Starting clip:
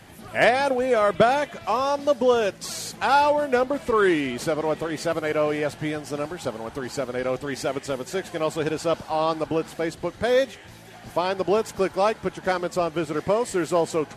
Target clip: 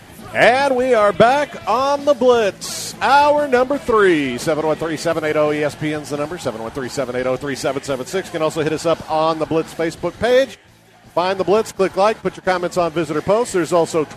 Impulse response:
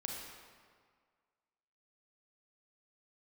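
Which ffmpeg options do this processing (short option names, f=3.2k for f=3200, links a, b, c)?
-filter_complex "[0:a]asettb=1/sr,asplit=3[a][b][c];[a]atrim=end=10.314[d];[b]atrim=start=10.31:end=12.57,asetpts=PTS-STARTPTS,afade=t=in:d=0.004:c=qsin,afade=t=out:st=2.256:d=0.004:c=qsin,agate=range=-10dB:threshold=-32dB:ratio=16:detection=peak[e];[c]atrim=start=12.566[f];[d][e]acrossfade=d=0.004:c1=hsin:c2=qsin[g];[g][f]acrossfade=d=0.004:c1=qsin:c2=hsin,volume=6.5dB"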